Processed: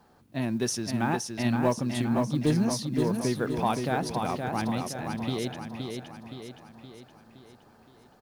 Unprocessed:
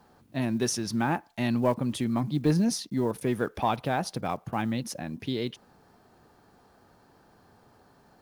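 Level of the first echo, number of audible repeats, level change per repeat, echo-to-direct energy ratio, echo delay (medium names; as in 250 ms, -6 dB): -5.0 dB, 6, -6.0 dB, -3.5 dB, 519 ms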